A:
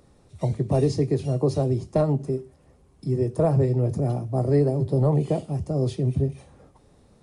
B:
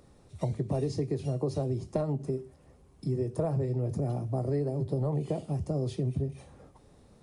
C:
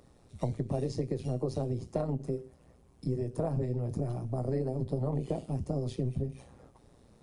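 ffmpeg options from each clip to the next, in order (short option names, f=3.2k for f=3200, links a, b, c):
-af "acompressor=threshold=-26dB:ratio=4,volume=-1.5dB"
-af "tremolo=f=120:d=0.667,volume=1dB"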